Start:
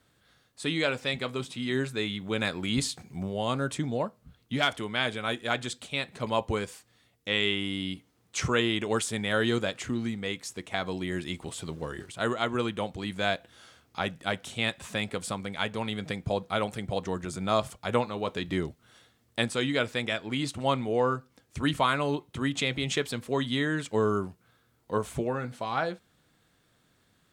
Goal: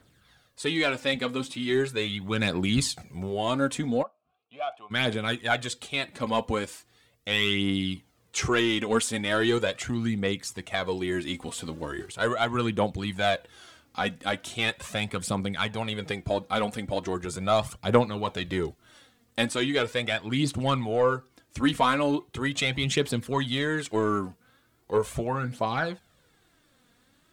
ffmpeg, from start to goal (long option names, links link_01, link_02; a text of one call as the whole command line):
ffmpeg -i in.wav -filter_complex "[0:a]aeval=exprs='0.282*(cos(1*acos(clip(val(0)/0.282,-1,1)))-cos(1*PI/2))+0.0158*(cos(5*acos(clip(val(0)/0.282,-1,1)))-cos(5*PI/2))':channel_layout=same,aphaser=in_gain=1:out_gain=1:delay=4.3:decay=0.5:speed=0.39:type=triangular,asplit=3[link_01][link_02][link_03];[link_01]afade=type=out:start_time=4.02:duration=0.02[link_04];[link_02]asplit=3[link_05][link_06][link_07];[link_05]bandpass=frequency=730:width_type=q:width=8,volume=0dB[link_08];[link_06]bandpass=frequency=1090:width_type=q:width=8,volume=-6dB[link_09];[link_07]bandpass=frequency=2440:width_type=q:width=8,volume=-9dB[link_10];[link_08][link_09][link_10]amix=inputs=3:normalize=0,afade=type=in:start_time=4.02:duration=0.02,afade=type=out:start_time=4.9:duration=0.02[link_11];[link_03]afade=type=in:start_time=4.9:duration=0.02[link_12];[link_04][link_11][link_12]amix=inputs=3:normalize=0" out.wav